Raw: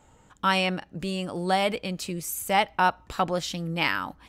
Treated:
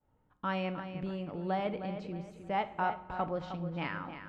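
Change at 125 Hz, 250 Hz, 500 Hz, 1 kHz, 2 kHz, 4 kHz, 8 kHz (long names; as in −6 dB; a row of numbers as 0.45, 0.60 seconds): −6.0 dB, −6.5 dB, −7.5 dB, −9.5 dB, −13.0 dB, −18.5 dB, below −30 dB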